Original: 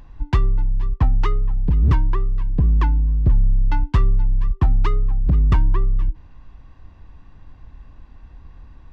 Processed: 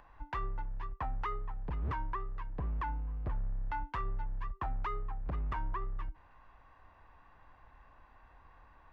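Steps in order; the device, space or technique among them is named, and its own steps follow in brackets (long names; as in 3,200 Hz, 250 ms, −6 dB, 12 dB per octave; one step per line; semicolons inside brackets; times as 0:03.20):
DJ mixer with the lows and highs turned down (three-way crossover with the lows and the highs turned down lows −20 dB, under 570 Hz, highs −15 dB, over 2,200 Hz; brickwall limiter −28 dBFS, peak gain reduction 10 dB)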